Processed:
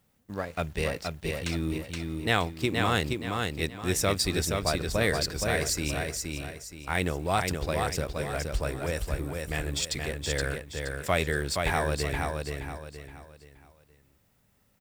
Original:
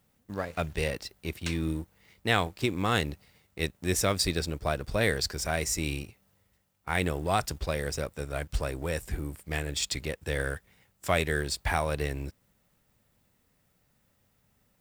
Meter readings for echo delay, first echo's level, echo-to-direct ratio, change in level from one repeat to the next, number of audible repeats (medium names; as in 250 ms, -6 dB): 472 ms, -4.0 dB, -3.5 dB, -9.0 dB, 4